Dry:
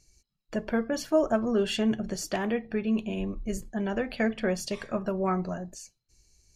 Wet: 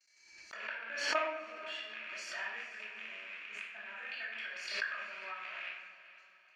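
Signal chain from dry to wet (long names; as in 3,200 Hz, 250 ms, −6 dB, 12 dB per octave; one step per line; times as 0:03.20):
loose part that buzzes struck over −42 dBFS, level −25 dBFS
noise gate with hold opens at −55 dBFS
output level in coarse steps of 20 dB
transient designer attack +6 dB, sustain −11 dB
0:02.10–0:02.71: leveller curve on the samples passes 1
four-pole ladder band-pass 1,900 Hz, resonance 35%
feedback delay with all-pass diffusion 467 ms, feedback 44%, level −15 dB
rectangular room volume 430 cubic metres, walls mixed, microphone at 2.7 metres
background raised ahead of every attack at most 55 dB per second
level +5.5 dB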